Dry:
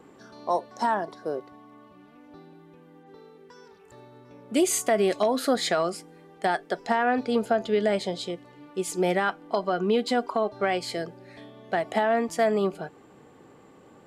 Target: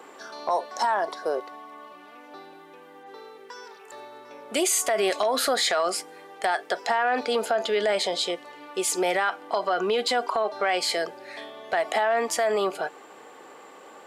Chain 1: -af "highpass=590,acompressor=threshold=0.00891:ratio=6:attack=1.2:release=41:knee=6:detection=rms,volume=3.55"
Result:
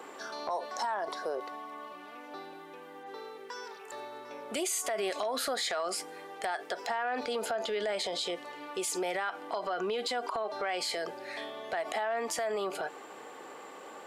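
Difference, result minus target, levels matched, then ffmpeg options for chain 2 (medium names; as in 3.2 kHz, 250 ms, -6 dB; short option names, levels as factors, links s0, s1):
compression: peak gain reduction +9 dB
-af "highpass=590,acompressor=threshold=0.0316:ratio=6:attack=1.2:release=41:knee=6:detection=rms,volume=3.55"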